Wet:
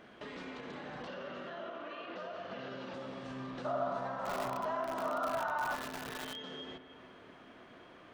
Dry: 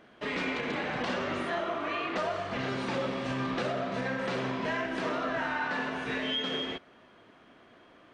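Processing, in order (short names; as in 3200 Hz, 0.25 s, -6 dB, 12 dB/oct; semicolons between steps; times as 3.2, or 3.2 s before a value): compressor 3:1, threshold -47 dBFS, peak gain reduction 14 dB; 1.07–2.94 speaker cabinet 150–6000 Hz, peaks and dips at 180 Hz +4 dB, 540 Hz +9 dB, 1500 Hz +5 dB, 2800 Hz +7 dB; de-hum 311.9 Hz, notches 3; on a send: darkening echo 0.285 s, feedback 74%, low-pass 1900 Hz, level -14 dB; on the sum: limiter -35.5 dBFS, peak gain reduction 5.5 dB; 3.65–5.75 spectral gain 550–1500 Hz +12 dB; spring tank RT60 1.3 s, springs 54 ms, chirp 60 ms, DRR 12 dB; dynamic EQ 2300 Hz, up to -7 dB, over -59 dBFS, Q 2.6; lo-fi delay 0.599 s, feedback 35%, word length 6-bit, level -4.5 dB; gain +1 dB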